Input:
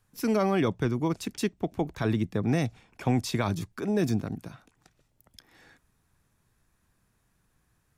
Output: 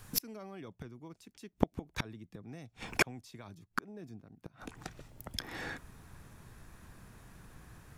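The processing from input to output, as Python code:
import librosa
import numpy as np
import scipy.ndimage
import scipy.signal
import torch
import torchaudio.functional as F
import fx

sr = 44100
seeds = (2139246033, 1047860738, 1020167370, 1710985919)

y = fx.high_shelf(x, sr, hz=3100.0, db=fx.steps((0.0, 2.0), (3.57, -6.0)))
y = fx.gate_flip(y, sr, shuts_db=-30.0, range_db=-39)
y = y * librosa.db_to_amplitude(17.0)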